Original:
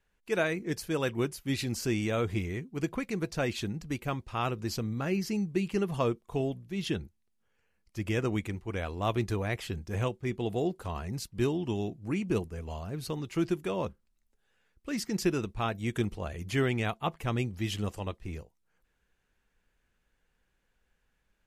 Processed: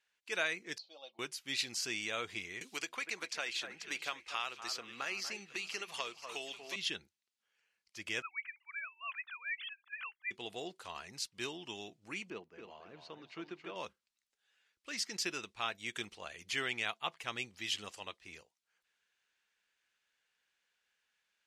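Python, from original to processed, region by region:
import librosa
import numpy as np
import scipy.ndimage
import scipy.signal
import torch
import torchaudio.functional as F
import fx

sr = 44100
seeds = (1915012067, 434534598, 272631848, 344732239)

y = fx.chain(x, sr, fx.double_bandpass(hz=1700.0, octaves=2.6),
    fx.air_absorb(metres=160.0),
    fx.comb(ms=3.6, depth=0.65), at=(0.78, 1.19))
y = fx.chain(y, sr, fx.peak_eq(hz=140.0, db=-13.5, octaves=2.1),
    fx.echo_alternate(ms=240, hz=2100.0, feedback_pct=60, wet_db=-11),
    fx.band_squash(depth_pct=100), at=(2.61, 6.76))
y = fx.chain(y, sr, fx.sine_speech(),
    fx.highpass(hz=1300.0, slope=24), at=(8.22, 10.31))
y = fx.chain(y, sr, fx.highpass(hz=150.0, slope=12),
    fx.spacing_loss(db_at_10k=33),
    fx.echo_feedback(ms=272, feedback_pct=26, wet_db=-7.0), at=(12.3, 13.76))
y = scipy.signal.sosfilt(scipy.signal.butter(2, 4300.0, 'lowpass', fs=sr, output='sos'), y)
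y = np.diff(y, prepend=0.0)
y = y * librosa.db_to_amplitude(10.5)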